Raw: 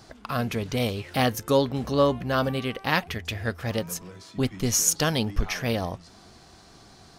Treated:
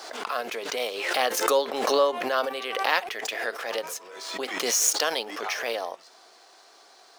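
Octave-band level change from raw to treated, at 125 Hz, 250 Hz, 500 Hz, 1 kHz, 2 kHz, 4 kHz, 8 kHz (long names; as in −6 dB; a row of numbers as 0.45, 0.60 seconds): below −30 dB, −11.5 dB, 0.0 dB, +2.5 dB, +2.5 dB, +2.5 dB, 0.0 dB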